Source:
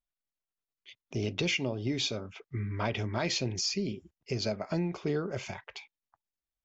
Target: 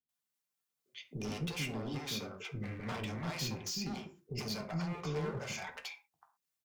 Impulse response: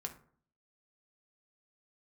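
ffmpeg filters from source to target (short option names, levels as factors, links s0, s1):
-filter_complex "[0:a]highpass=150,highshelf=f=4600:g=6.5,acrossover=split=240[s0][s1];[s1]acompressor=threshold=0.0126:ratio=3[s2];[s0][s2]amix=inputs=2:normalize=0,tremolo=f=3.9:d=0.28,asoftclip=type=hard:threshold=0.01,acrossover=split=460[s3][s4];[s4]adelay=90[s5];[s3][s5]amix=inputs=2:normalize=0[s6];[1:a]atrim=start_sample=2205,atrim=end_sample=6174[s7];[s6][s7]afir=irnorm=-1:irlink=0,volume=2.11"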